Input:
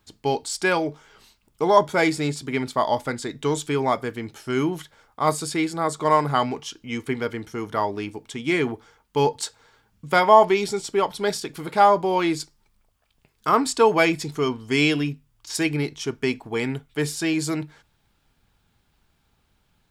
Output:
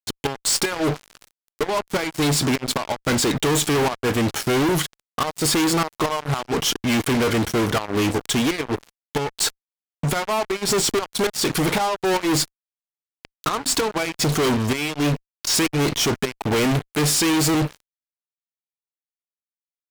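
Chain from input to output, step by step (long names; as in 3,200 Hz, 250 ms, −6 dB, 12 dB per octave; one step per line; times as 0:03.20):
gate with flip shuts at −12 dBFS, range −25 dB
fuzz pedal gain 44 dB, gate −45 dBFS
level −4.5 dB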